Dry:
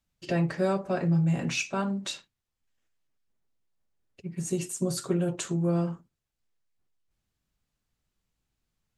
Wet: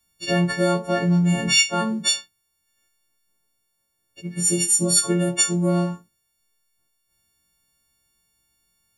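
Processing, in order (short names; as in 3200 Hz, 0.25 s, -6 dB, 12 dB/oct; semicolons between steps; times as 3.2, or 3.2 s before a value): frequency quantiser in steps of 4 st; gain +5.5 dB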